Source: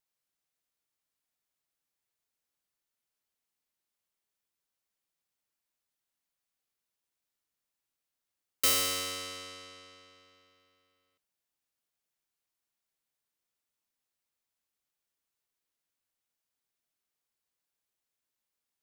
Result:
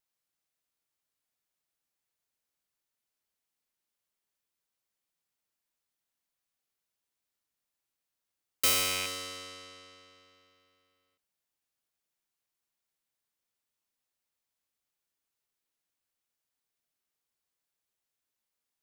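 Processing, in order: rattling part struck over -48 dBFS, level -23 dBFS; ending taper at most 160 dB/s

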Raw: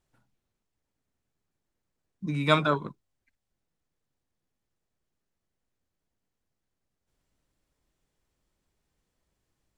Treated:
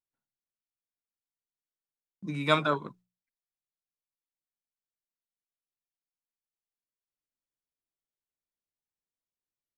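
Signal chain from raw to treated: gate with hold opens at -49 dBFS; low shelf 130 Hz -9 dB; notches 60/120/180 Hz; gain -1.5 dB

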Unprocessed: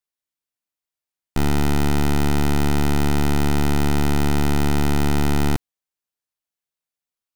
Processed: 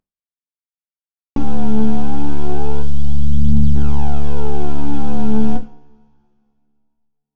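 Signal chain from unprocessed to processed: CVSD 32 kbps; recorder AGC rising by 8.6 dB/s; spectral gain 2.82–3.76, 230–2900 Hz -21 dB; phaser 0.28 Hz, delay 4.6 ms, feedback 70%; on a send: reverb, pre-delay 3 ms, DRR 4.5 dB; on the sum: gain -3 dB

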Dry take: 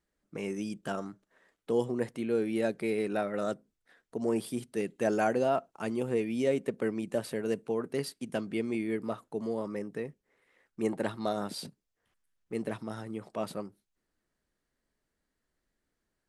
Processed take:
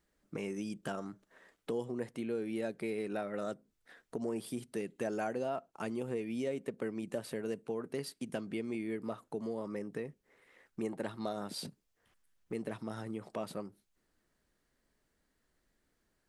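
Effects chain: compressor 2.5:1, threshold -44 dBFS, peak gain reduction 14 dB; gain +4.5 dB

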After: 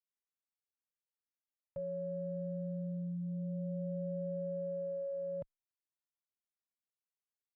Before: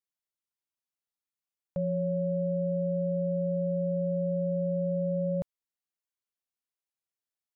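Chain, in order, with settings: Wiener smoothing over 9 samples; endless flanger 2.2 ms +0.28 Hz; gain -6.5 dB

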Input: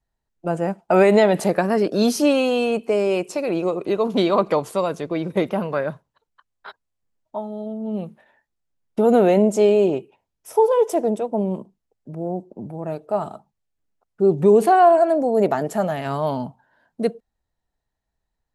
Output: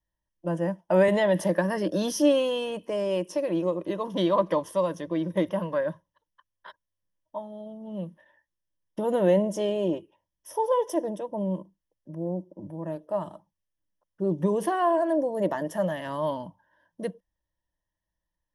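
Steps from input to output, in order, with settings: ripple EQ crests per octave 1.2, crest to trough 13 dB; 1.08–2.13 three-band squash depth 40%; gain -8 dB

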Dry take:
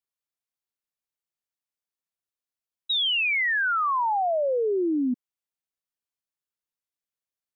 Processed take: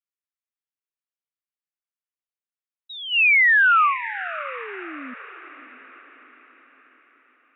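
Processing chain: band shelf 1800 Hz +9 dB; gate -16 dBFS, range -15 dB; on a send: diffused feedback echo 0.627 s, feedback 47%, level -15 dB; on the sum: gain +1.5 dB

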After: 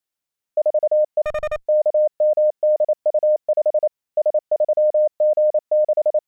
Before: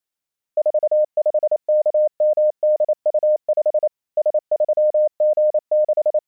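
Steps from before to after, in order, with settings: 1.23–1.66 one-sided clip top -29.5 dBFS, bottom -16 dBFS

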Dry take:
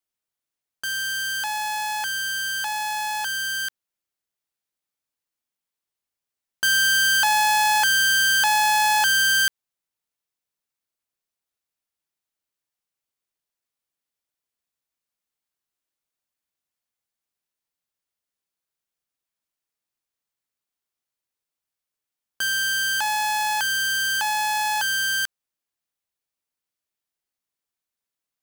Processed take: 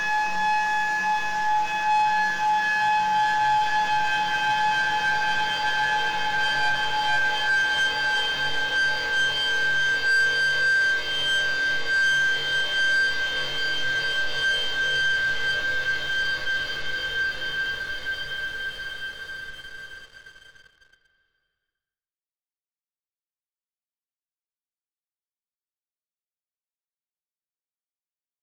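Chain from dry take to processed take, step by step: CVSD 32 kbps; Paulstretch 24×, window 0.50 s, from 3.01; sample leveller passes 2

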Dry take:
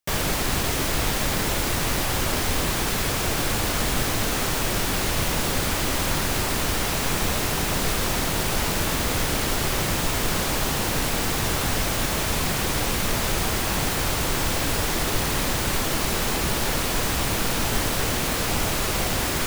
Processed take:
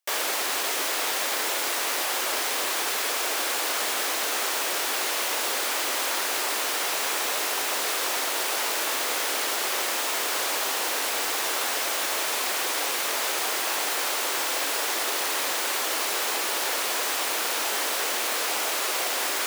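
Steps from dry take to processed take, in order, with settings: Bessel high-pass 550 Hz, order 6

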